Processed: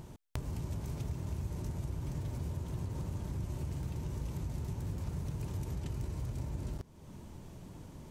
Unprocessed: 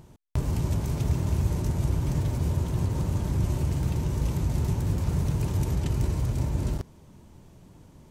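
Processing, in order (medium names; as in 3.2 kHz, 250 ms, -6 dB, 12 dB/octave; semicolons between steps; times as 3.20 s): compression 2.5:1, threshold -45 dBFS, peak gain reduction 17 dB; trim +2.5 dB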